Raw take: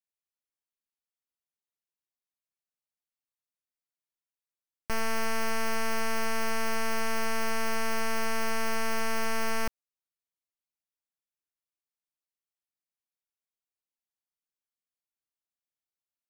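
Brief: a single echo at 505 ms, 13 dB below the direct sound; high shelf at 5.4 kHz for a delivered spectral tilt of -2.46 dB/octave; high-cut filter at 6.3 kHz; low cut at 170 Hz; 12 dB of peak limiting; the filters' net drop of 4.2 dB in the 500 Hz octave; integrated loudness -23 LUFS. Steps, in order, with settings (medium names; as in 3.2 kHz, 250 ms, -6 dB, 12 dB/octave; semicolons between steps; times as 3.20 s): high-pass 170 Hz; low-pass 6.3 kHz; peaking EQ 500 Hz -5.5 dB; treble shelf 5.4 kHz -4.5 dB; peak limiter -33 dBFS; delay 505 ms -13 dB; trim +22 dB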